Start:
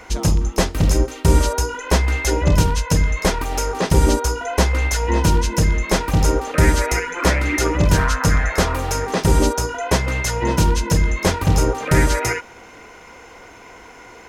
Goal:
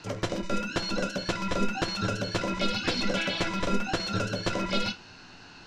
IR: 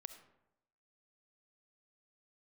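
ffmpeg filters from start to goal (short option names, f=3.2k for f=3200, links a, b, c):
-filter_complex "[0:a]highpass=f=180:t=q:w=0.5412,highpass=f=180:t=q:w=1.307,lowpass=f=3.1k:t=q:w=0.5176,lowpass=f=3.1k:t=q:w=0.7071,lowpass=f=3.1k:t=q:w=1.932,afreqshift=-390[a];[1:a]atrim=start_sample=2205,asetrate=79380,aresample=44100[b];[a][b]afir=irnorm=-1:irlink=0,asetrate=111132,aresample=44100,volume=3.5dB"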